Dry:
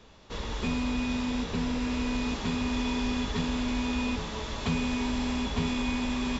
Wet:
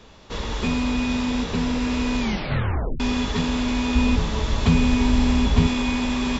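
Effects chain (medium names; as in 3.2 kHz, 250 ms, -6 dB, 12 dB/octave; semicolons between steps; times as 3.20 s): 2.20 s: tape stop 0.80 s; 3.95–5.67 s: bass shelf 170 Hz +10 dB; trim +6.5 dB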